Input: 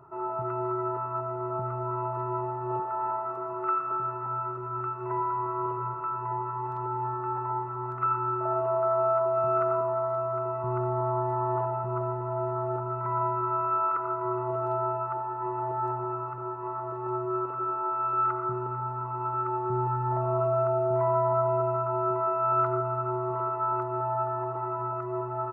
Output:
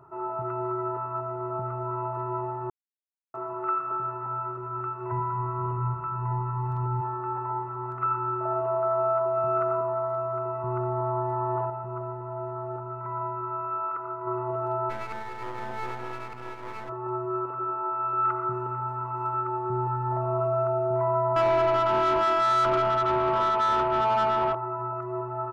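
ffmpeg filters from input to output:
-filter_complex "[0:a]asplit=3[s0][s1][s2];[s0]afade=t=out:st=5.11:d=0.02[s3];[s1]asubboost=boost=6:cutoff=170,afade=t=in:st=5.11:d=0.02,afade=t=out:st=7:d=0.02[s4];[s2]afade=t=in:st=7:d=0.02[s5];[s3][s4][s5]amix=inputs=3:normalize=0,asplit=3[s6][s7][s8];[s6]afade=t=out:st=14.89:d=0.02[s9];[s7]aeval=exprs='max(val(0),0)':c=same,afade=t=in:st=14.89:d=0.02,afade=t=out:st=16.88:d=0.02[s10];[s8]afade=t=in:st=16.88:d=0.02[s11];[s9][s10][s11]amix=inputs=3:normalize=0,asplit=3[s12][s13][s14];[s12]afade=t=out:st=18.23:d=0.02[s15];[s13]highshelf=f=2200:g=7.5,afade=t=in:st=18.23:d=0.02,afade=t=out:st=19.39:d=0.02[s16];[s14]afade=t=in:st=19.39:d=0.02[s17];[s15][s16][s17]amix=inputs=3:normalize=0,asettb=1/sr,asplit=3[s18][s19][s20];[s18]atrim=end=21.364[s21];[s19]atrim=start=21.36:end=24.55,asetpts=PTS-STARTPTS,afade=t=in:d=0.004:c=qsin,afade=t=out:st=3.186:d=0.004:c=qsin,asplit=2[s22][s23];[s23]highpass=f=720:p=1,volume=11.2,asoftclip=type=tanh:threshold=0.178[s24];[s22][s24]amix=inputs=2:normalize=0,lowpass=f=1500:p=1,volume=0.501[s25];[s20]atrim=start=24.546[s26];[s21][s25]acrossfade=d=0.004:c1=hsin:c2=qsin[s27];[s27][s26]acrossfade=d=0.004:c1=qsin:c2=hsin,asplit=5[s28][s29][s30][s31][s32];[s28]atrim=end=2.7,asetpts=PTS-STARTPTS,afade=t=out:st=2.696:d=0.004:c=hsin[s33];[s29]atrim=start=2.7:end=3.34,asetpts=PTS-STARTPTS,volume=0[s34];[s30]atrim=start=3.34:end=11.702,asetpts=PTS-STARTPTS,afade=t=in:d=0.004:c=hsin[s35];[s31]atrim=start=11.698:end=14.272,asetpts=PTS-STARTPTS,volume=0.631[s36];[s32]atrim=start=14.268[s37];[s33][s34][s35]concat=n=3:v=0:a=1[s38];[s38][s36]acrossfade=d=0.004:c1=hsin:c2=hsin[s39];[s39][s37]acrossfade=d=0.004:c1=hsin:c2=hsin"

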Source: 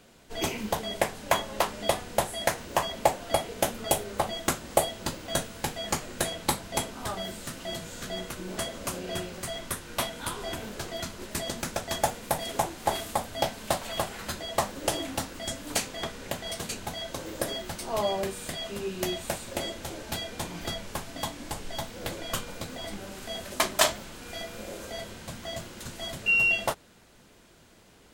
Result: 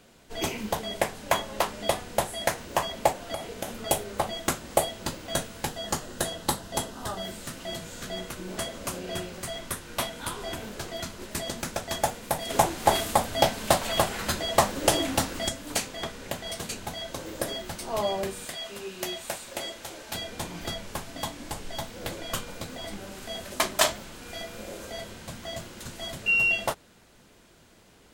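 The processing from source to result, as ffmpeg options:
-filter_complex "[0:a]asplit=3[s0][s1][s2];[s0]afade=t=out:st=3.12:d=0.02[s3];[s1]acompressor=threshold=0.0398:ratio=6:attack=3.2:release=140:knee=1:detection=peak,afade=t=in:st=3.12:d=0.02,afade=t=out:st=3.82:d=0.02[s4];[s2]afade=t=in:st=3.82:d=0.02[s5];[s3][s4][s5]amix=inputs=3:normalize=0,asettb=1/sr,asplit=3[s6][s7][s8];[s6]atrim=end=5.684[s9];[s7]atrim=start=5.68:end=7.23,asetpts=PTS-STARTPTS,afade=t=in:d=0.004:c=qsin,afade=t=out:st=1.546:d=0.004:c=qsin,equalizer=f=2300:w=7.2:g=-12.5[s10];[s8]atrim=start=7.226[s11];[s9][s10]acrossfade=d=0.004:c1=hsin:c2=qsin[s12];[s12][s11]acrossfade=d=0.004:c1=qsin:c2=hsin,asettb=1/sr,asplit=3[s13][s14][s15];[s13]atrim=end=12.504[s16];[s14]atrim=start=12.5:end=15.49,asetpts=PTS-STARTPTS,afade=t=in:d=0.004:c=qsin,afade=t=out:st=2.986:d=0.004:c=qsin,acontrast=60[s17];[s15]atrim=start=15.486[s18];[s16][s17]acrossfade=d=0.004:c1=hsin:c2=qsin[s19];[s19][s18]acrossfade=d=0.004:c1=qsin:c2=hsin,asettb=1/sr,asplit=3[s20][s21][s22];[s20]atrim=end=18.454[s23];[s21]atrim=start=18.45:end=20.15,asetpts=PTS-STARTPTS,afade=t=in:d=0.004:c=qsin,afade=t=out:st=1.696:d=0.004:c=qsin,lowshelf=f=330:g=-11.5[s24];[s22]atrim=start=20.146[s25];[s23][s24]acrossfade=d=0.004:c1=hsin:c2=qsin[s26];[s26][s25]acrossfade=d=0.004:c1=qsin:c2=hsin"

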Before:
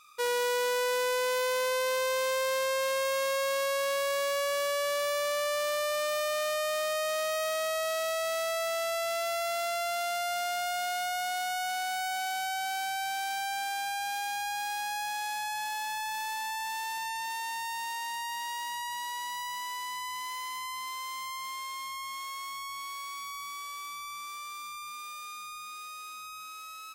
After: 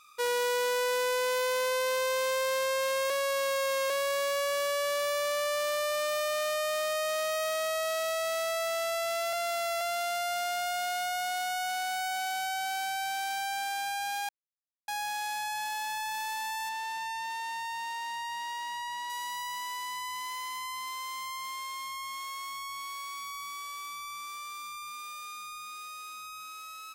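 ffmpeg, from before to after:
-filter_complex "[0:a]asettb=1/sr,asplit=3[s0][s1][s2];[s0]atrim=end=16.694[s3];[s1]atrim=start=16.69:end=19.1,asetpts=PTS-STARTPTS,afade=t=in:d=0.004:c=qsin,afade=t=out:st=2.406:d=0.004:c=qsin,highshelf=f=7800:g=-12[s4];[s2]atrim=start=19.096[s5];[s3][s4]acrossfade=d=0.004:c1=hsin:c2=qsin[s6];[s6][s5]acrossfade=d=0.004:c1=qsin:c2=hsin,asplit=7[s7][s8][s9][s10][s11][s12][s13];[s7]atrim=end=3.102[s14];[s8]atrim=start=3.098:end=3.902,asetpts=PTS-STARTPTS,areverse[s15];[s9]atrim=start=3.898:end=9.332[s16];[s10]atrim=start=9.328:end=9.812,asetpts=PTS-STARTPTS,areverse[s17];[s11]atrim=start=9.808:end=14.29,asetpts=PTS-STARTPTS,afade=t=out:st=4.478:d=0.004:c=hsin[s18];[s12]atrim=start=14.29:end=14.88,asetpts=PTS-STARTPTS,volume=0[s19];[s13]atrim=start=14.88,asetpts=PTS-STARTPTS,afade=t=in:d=0.004:c=hsin[s20];[s14][s15]acrossfade=d=0.004:c1=hsin:c2=hsin[s21];[s21][s16]acrossfade=d=0.004:c1=hsin:c2=hsin[s22];[s22][s17]acrossfade=d=0.004:c1=hsin:c2=hsin[s23];[s18][s19][s20]concat=n=3:v=0:a=1[s24];[s23][s24]acrossfade=d=0.004:c1=hsin:c2=hsin"

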